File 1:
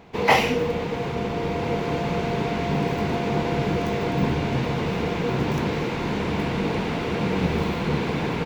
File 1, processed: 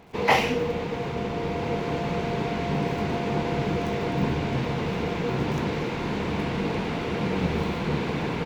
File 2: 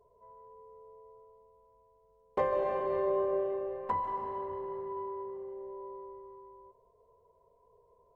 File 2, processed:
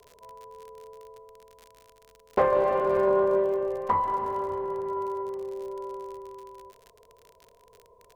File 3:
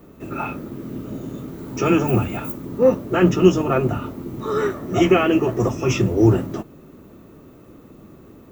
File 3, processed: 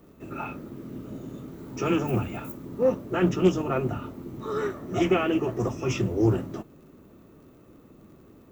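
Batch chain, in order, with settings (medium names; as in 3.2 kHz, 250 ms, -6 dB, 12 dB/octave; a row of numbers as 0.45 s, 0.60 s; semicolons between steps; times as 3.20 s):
crackle 55 per s -45 dBFS; loudspeaker Doppler distortion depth 0.17 ms; normalise loudness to -27 LUFS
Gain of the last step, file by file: -2.5 dB, +7.5 dB, -7.5 dB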